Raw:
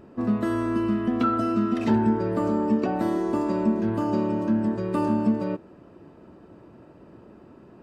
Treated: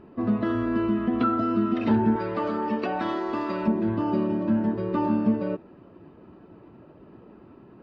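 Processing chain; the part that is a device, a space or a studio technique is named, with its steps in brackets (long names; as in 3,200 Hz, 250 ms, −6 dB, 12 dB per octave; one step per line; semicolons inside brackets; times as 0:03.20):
clip after many re-uploads (low-pass filter 4,100 Hz 24 dB per octave; spectral magnitudes quantised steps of 15 dB)
0:02.16–0:03.68: tilt shelving filter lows −8 dB, about 640 Hz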